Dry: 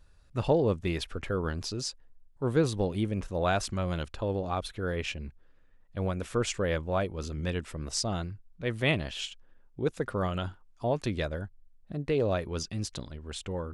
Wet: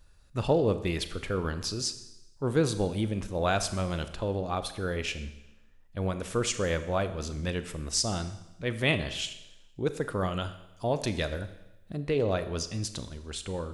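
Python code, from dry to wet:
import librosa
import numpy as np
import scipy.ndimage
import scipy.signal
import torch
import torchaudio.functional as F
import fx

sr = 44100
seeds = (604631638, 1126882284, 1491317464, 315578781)

y = fx.high_shelf(x, sr, hz=4300.0, db=fx.steps((0.0, 6.0), (10.4, 11.5), (11.97, 4.0)))
y = fx.rev_schroeder(y, sr, rt60_s=0.95, comb_ms=28, drr_db=10.5)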